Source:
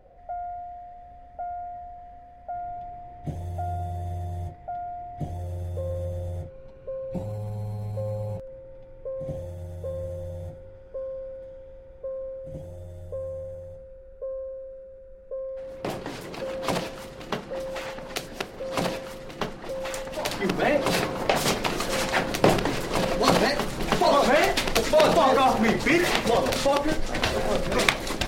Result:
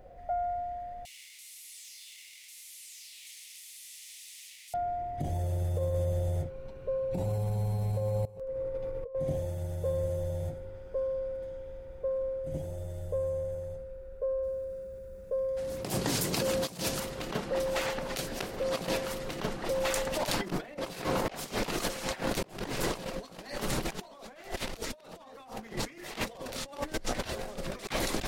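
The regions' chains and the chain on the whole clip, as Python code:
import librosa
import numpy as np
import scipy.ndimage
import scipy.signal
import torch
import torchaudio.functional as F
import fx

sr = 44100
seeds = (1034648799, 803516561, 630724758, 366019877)

y = fx.chain(x, sr, fx.delta_mod(bps=64000, step_db=-42.0),
    fx.steep_highpass(hz=2000.0, slope=72),
    fx.quant_float(bits=2), at=(1.05, 4.74))
y = fx.chain(y, sr, fx.notch(hz=3300.0, q=24.0),
    fx.over_compress(threshold_db=-45.0, ratio=-1.0),
    fx.small_body(hz=(480.0, 1100.0), ring_ms=60, db=14), at=(8.25, 9.15))
y = fx.chain(y, sr, fx.highpass(hz=110.0, slope=6),
    fx.bass_treble(bass_db=10, treble_db=11), at=(14.43, 17.0))
y = fx.high_shelf(y, sr, hz=5700.0, db=6.5)
y = fx.over_compress(y, sr, threshold_db=-30.0, ratio=-0.5)
y = y * librosa.db_to_amplitude(-2.5)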